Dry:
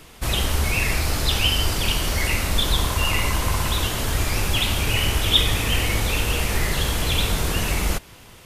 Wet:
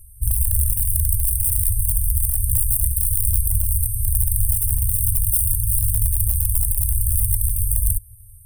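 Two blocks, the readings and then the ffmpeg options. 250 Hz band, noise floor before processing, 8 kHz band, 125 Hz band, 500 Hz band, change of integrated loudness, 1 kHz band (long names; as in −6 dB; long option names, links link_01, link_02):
below −20 dB, −46 dBFS, +7.0 dB, +2.0 dB, below −40 dB, +2.5 dB, below −40 dB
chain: -af "acontrast=56,aeval=exprs='(mod(2.82*val(0)+1,2)-1)/2.82':channel_layout=same,afftfilt=real='re*(1-between(b*sr/4096,110,8300))':imag='im*(1-between(b*sr/4096,110,8300))':win_size=4096:overlap=0.75"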